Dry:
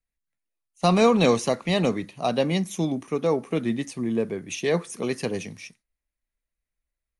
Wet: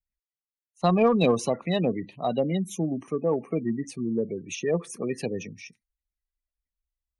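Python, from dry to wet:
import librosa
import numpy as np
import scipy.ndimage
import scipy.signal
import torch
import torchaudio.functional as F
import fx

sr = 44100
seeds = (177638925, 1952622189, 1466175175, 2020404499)

y = fx.spec_gate(x, sr, threshold_db=-20, keep='strong')
y = fx.cheby_harmonics(y, sr, harmonics=(2, 8), levels_db=(-19, -40), full_scale_db=-7.5)
y = y * 10.0 ** (-2.0 / 20.0)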